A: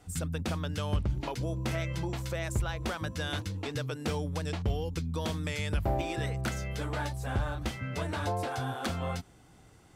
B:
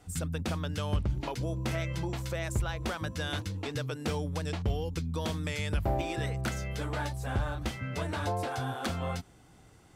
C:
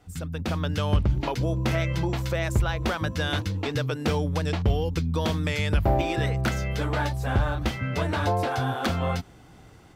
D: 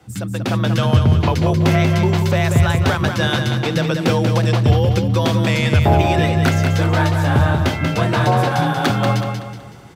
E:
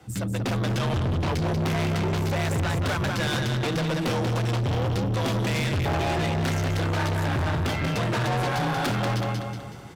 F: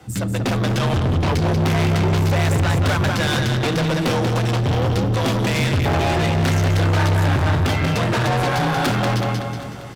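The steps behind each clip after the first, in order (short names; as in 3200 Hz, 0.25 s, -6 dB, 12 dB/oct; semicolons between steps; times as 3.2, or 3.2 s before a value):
nothing audible
AGC gain up to 7.5 dB; bell 8900 Hz -7.5 dB 1 oct
frequency shift +31 Hz; on a send: feedback echo 0.187 s, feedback 39%, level -6 dB; on the sum: gain +8 dB
tube stage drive 23 dB, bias 0.35
echo 0.771 s -19.5 dB; reverb RT60 2.2 s, pre-delay 4 ms, DRR 15.5 dB; gain +6 dB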